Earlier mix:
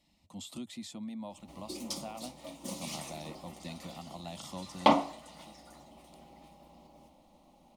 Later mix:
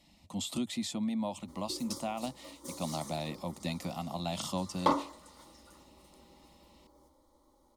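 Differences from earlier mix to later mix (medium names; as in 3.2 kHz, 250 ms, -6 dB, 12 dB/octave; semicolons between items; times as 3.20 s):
speech +8.0 dB; background: add static phaser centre 710 Hz, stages 6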